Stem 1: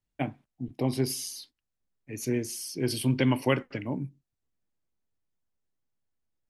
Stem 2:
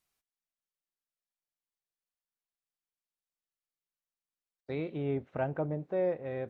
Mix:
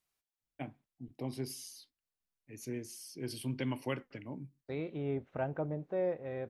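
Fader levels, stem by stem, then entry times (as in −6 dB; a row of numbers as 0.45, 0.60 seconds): −11.5, −3.0 decibels; 0.40, 0.00 seconds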